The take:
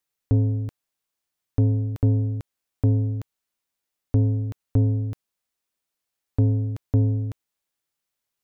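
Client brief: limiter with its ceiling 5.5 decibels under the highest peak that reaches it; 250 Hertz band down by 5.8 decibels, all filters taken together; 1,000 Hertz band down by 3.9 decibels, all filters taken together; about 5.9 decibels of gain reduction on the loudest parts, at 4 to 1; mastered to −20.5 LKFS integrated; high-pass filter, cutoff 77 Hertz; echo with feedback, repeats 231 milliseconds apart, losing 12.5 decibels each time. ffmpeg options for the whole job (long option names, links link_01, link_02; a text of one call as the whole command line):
ffmpeg -i in.wav -af "highpass=77,equalizer=frequency=250:width_type=o:gain=-6,equalizer=frequency=1000:width_type=o:gain=-5.5,acompressor=threshold=-24dB:ratio=4,alimiter=limit=-21.5dB:level=0:latency=1,aecho=1:1:231|462|693:0.237|0.0569|0.0137,volume=11.5dB" out.wav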